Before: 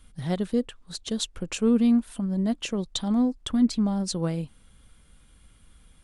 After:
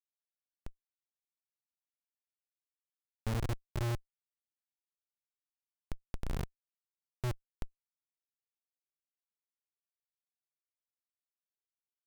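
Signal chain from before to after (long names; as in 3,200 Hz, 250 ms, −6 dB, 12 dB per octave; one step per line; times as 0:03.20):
spectral magnitudes quantised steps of 15 dB
in parallel at 0 dB: downward compressor 10 to 1, threshold −31 dBFS, peak gain reduction 15 dB
on the sum: high-frequency loss of the air 90 metres
tuned comb filter 400 Hz, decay 0.77 s, mix 90%
wrong playback speed 15 ips tape played at 7.5 ips
comparator with hysteresis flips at −33.5 dBFS
level +11.5 dB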